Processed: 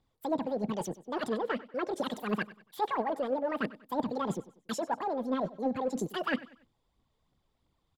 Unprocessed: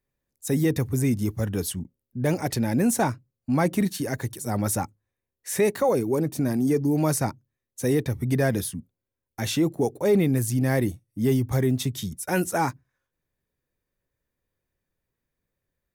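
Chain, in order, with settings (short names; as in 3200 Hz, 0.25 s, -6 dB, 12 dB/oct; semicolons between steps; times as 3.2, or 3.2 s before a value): treble ducked by the level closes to 940 Hz, closed at -17.5 dBFS; reverse; compressor 6:1, threshold -34 dBFS, peak gain reduction 16.5 dB; reverse; phaser 1.5 Hz, delay 4.9 ms, feedback 51%; in parallel at -11.5 dB: soft clip -34.5 dBFS, distortion -10 dB; on the sum: air absorption 140 m; feedback echo 0.191 s, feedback 36%, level -18 dB; speed mistake 7.5 ips tape played at 15 ips; gain +2 dB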